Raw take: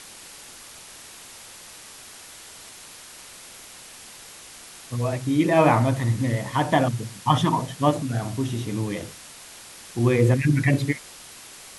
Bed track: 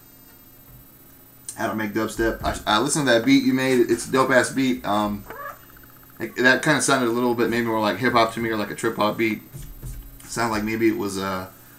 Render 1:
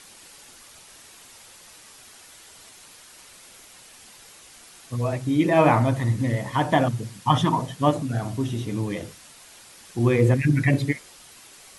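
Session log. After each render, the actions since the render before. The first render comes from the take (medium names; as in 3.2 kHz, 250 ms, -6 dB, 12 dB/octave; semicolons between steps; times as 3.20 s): noise reduction 6 dB, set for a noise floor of -44 dBFS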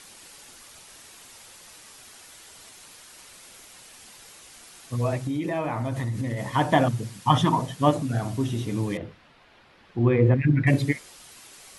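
5.21–6.54 s: compression 8:1, threshold -24 dBFS; 8.97–10.67 s: distance through air 360 m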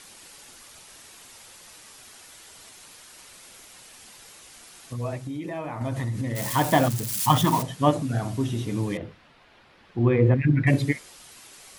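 4.93–5.81 s: gain -5 dB; 6.35–7.63 s: zero-crossing glitches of -21 dBFS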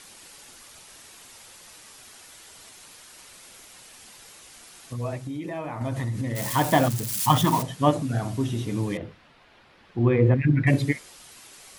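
no audible change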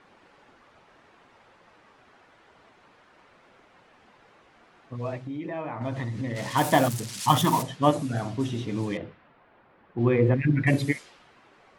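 level-controlled noise filter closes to 1.3 kHz, open at -19 dBFS; bass shelf 85 Hz -11 dB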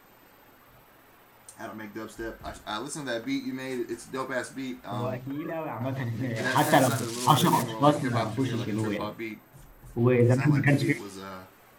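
add bed track -14 dB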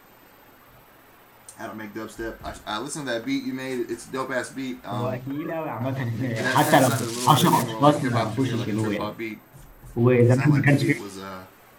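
trim +4 dB; peak limiter -2 dBFS, peak gain reduction 1 dB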